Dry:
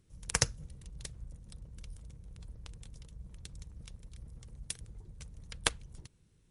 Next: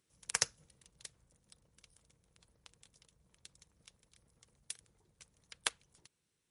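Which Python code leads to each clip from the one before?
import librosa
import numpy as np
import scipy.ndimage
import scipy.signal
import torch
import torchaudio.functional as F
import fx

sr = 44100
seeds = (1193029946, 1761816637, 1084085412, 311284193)

y = fx.highpass(x, sr, hz=820.0, slope=6)
y = fx.rider(y, sr, range_db=10, speed_s=2.0)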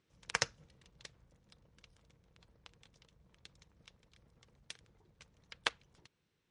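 y = fx.air_absorb(x, sr, metres=150.0)
y = F.gain(torch.from_numpy(y), 5.0).numpy()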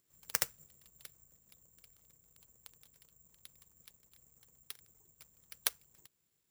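y = (np.kron(x[::6], np.eye(6)[0]) * 6)[:len(x)]
y = F.gain(torch.from_numpy(y), -6.5).numpy()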